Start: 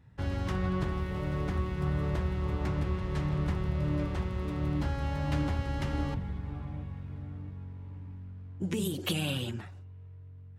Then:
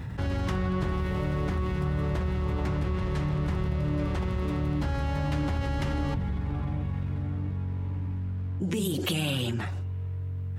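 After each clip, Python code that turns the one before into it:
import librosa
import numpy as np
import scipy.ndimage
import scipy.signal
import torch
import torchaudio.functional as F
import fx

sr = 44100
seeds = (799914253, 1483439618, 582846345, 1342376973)

y = fx.env_flatten(x, sr, amount_pct=70)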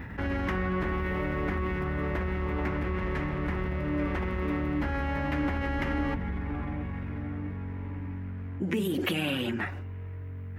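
y = fx.graphic_eq(x, sr, hz=(125, 250, 2000, 4000, 8000), db=(-11, 5, 9, -7, -11))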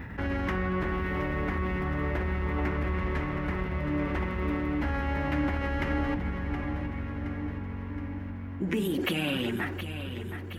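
y = fx.echo_feedback(x, sr, ms=720, feedback_pct=57, wet_db=-10)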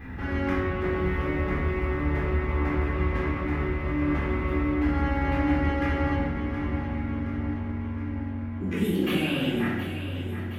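y = fx.room_shoebox(x, sr, seeds[0], volume_m3=490.0, walls='mixed', distance_m=3.8)
y = F.gain(torch.from_numpy(y), -7.5).numpy()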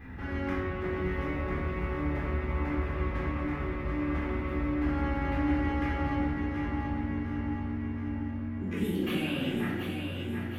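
y = fx.echo_feedback(x, sr, ms=737, feedback_pct=42, wet_db=-7.0)
y = F.gain(torch.from_numpy(y), -5.5).numpy()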